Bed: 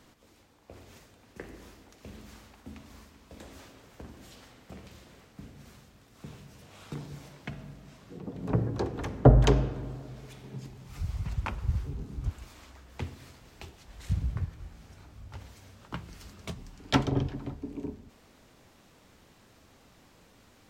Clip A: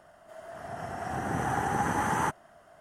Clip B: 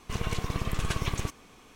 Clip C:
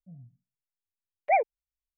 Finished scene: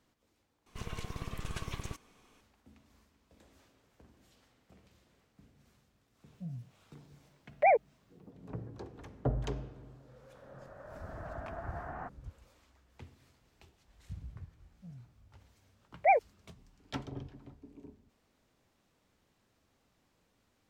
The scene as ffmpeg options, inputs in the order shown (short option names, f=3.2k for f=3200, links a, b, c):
-filter_complex "[3:a]asplit=2[a][b];[0:a]volume=-15dB[c];[a]alimiter=level_in=24dB:limit=-1dB:release=50:level=0:latency=1[d];[1:a]highpass=f=180:t=q:w=0.5412,highpass=f=180:t=q:w=1.307,lowpass=f=2.3k:t=q:w=0.5176,lowpass=f=2.3k:t=q:w=0.7071,lowpass=f=2.3k:t=q:w=1.932,afreqshift=-140[e];[c]asplit=2[f][g];[f]atrim=end=0.664[h];[2:a]atrim=end=1.75,asetpts=PTS-STARTPTS,volume=-10dB[i];[g]atrim=start=2.406[j];[d]atrim=end=1.97,asetpts=PTS-STARTPTS,volume=-17.5dB,afade=t=in:d=0.004:c=hsin,afade=t=out:st=1.966:d=0.004:c=hsin,adelay=279594S[k];[e]atrim=end=2.8,asetpts=PTS-STARTPTS,volume=-14.5dB,afade=t=in:d=0.004:c=hsin,afade=t=out:st=2.796:d=0.004:c=hsin,adelay=431298S[l];[b]atrim=end=1.97,asetpts=PTS-STARTPTS,volume=-1.5dB,afade=t=in:d=0.004:c=hsin,afade=t=out:st=1.966:d=0.004:c=hsin,adelay=650916S[m];[h][i]acrossfade=d=0.004:c1=hsin:c2=hsin[n];[n][j]acrossfade=d=0.004:c1=hsin:c2=hsin[o];[o][k][l][m]amix=inputs=4:normalize=0"